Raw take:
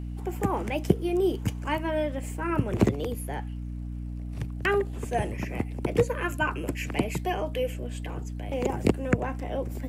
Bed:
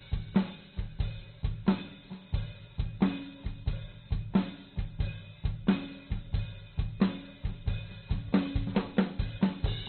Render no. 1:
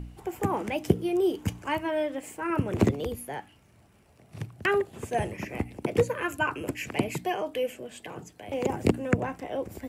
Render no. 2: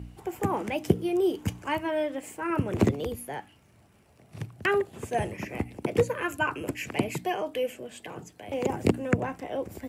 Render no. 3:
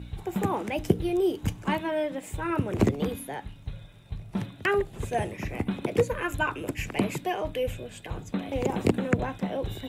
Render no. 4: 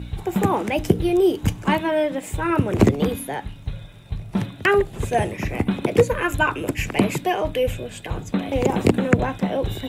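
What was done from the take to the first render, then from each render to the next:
hum removal 60 Hz, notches 5
high-pass filter 55 Hz
mix in bed −4.5 dB
level +7.5 dB; brickwall limiter −2 dBFS, peak gain reduction 2.5 dB

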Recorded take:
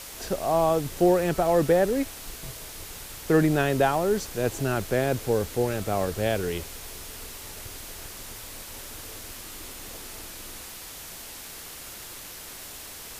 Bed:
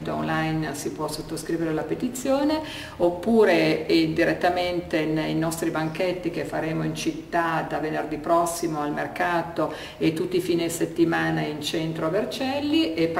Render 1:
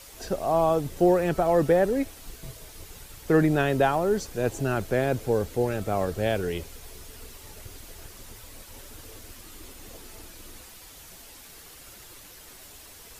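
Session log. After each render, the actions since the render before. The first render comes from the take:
broadband denoise 8 dB, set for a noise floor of −41 dBFS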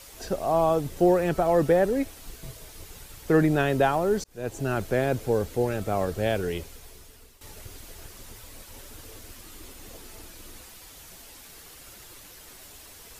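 0:04.24–0:04.88: fade in equal-power
0:06.53–0:07.41: fade out, to −13 dB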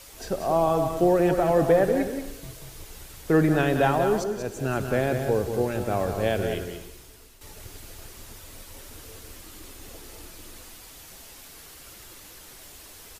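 single-tap delay 186 ms −7.5 dB
reverb whose tail is shaped and stops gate 320 ms flat, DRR 10 dB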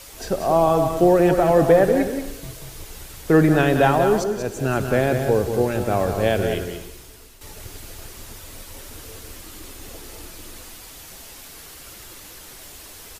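level +5 dB

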